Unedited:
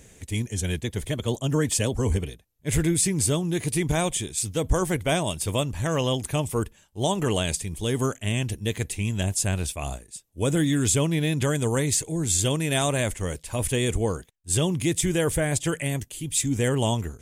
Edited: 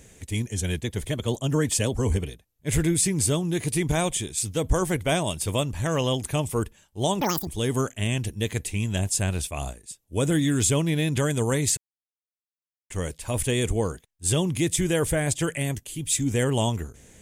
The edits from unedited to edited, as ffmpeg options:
-filter_complex "[0:a]asplit=5[s0][s1][s2][s3][s4];[s0]atrim=end=7.214[s5];[s1]atrim=start=7.21:end=7.72,asetpts=PTS-STARTPTS,asetrate=85995,aresample=44100[s6];[s2]atrim=start=7.716:end=12.02,asetpts=PTS-STARTPTS,afade=t=out:st=4.3:d=0.004:c=hsin[s7];[s3]atrim=start=12.02:end=13.15,asetpts=PTS-STARTPTS,volume=0[s8];[s4]atrim=start=13.15,asetpts=PTS-STARTPTS,afade=t=in:d=0.004:c=hsin[s9];[s5][s6]acrossfade=d=0.004:c1=hsin:c2=hsin[s10];[s7][s8][s9]concat=n=3:v=0:a=1[s11];[s10][s11]acrossfade=d=0.004:c1=hsin:c2=hsin"

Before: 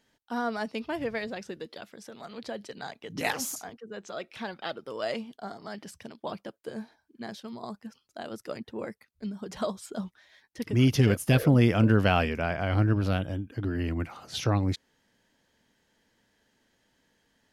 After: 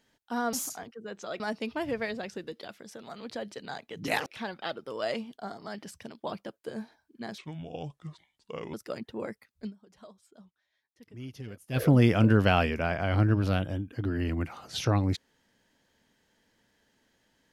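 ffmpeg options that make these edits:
-filter_complex "[0:a]asplit=8[s0][s1][s2][s3][s4][s5][s6][s7];[s0]atrim=end=0.532[s8];[s1]atrim=start=3.388:end=4.262[s9];[s2]atrim=start=0.528:end=3.392[s10];[s3]atrim=start=4.258:end=7.384[s11];[s4]atrim=start=7.38:end=8.33,asetpts=PTS-STARTPTS,asetrate=30870,aresample=44100,atrim=end_sample=59850,asetpts=PTS-STARTPTS[s12];[s5]atrim=start=8.326:end=9.37,asetpts=PTS-STARTPTS,afade=t=out:st=0.914:d=0.13:c=qua:silence=0.1[s13];[s6]atrim=start=9.37:end=11.27,asetpts=PTS-STARTPTS,volume=0.1[s14];[s7]atrim=start=11.27,asetpts=PTS-STARTPTS,afade=t=in:d=0.13:c=qua:silence=0.1[s15];[s8][s9]acrossfade=d=0.004:c1=hsin:c2=hsin[s16];[s16][s10]acrossfade=d=0.004:c1=hsin:c2=hsin[s17];[s17][s11]acrossfade=d=0.004:c1=hsin:c2=hsin[s18];[s18][s12]acrossfade=d=0.004:c1=hsin:c2=hsin[s19];[s13][s14][s15]concat=n=3:v=0:a=1[s20];[s19][s20]acrossfade=d=0.004:c1=hsin:c2=hsin"

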